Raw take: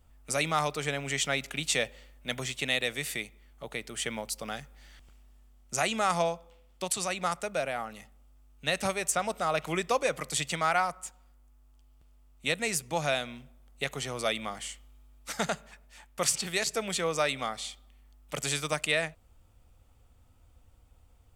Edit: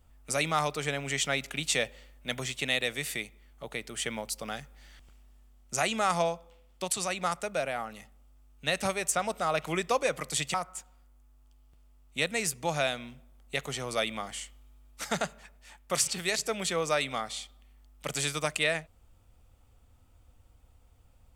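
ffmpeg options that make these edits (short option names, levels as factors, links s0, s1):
-filter_complex "[0:a]asplit=2[s0][s1];[s0]atrim=end=10.542[s2];[s1]atrim=start=10.818[s3];[s2][s3]acrossfade=d=0.004:c1=hsin:c2=hsin"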